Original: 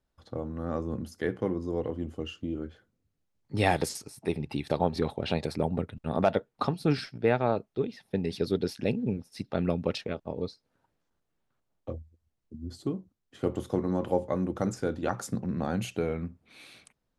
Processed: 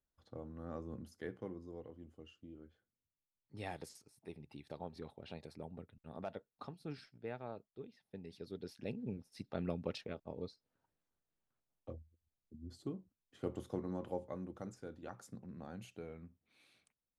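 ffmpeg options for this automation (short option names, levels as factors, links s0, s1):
-af "volume=0.631,afade=t=out:st=1.04:d=0.87:silence=0.446684,afade=t=in:st=8.47:d=0.83:silence=0.354813,afade=t=out:st=13.6:d=1.16:silence=0.421697"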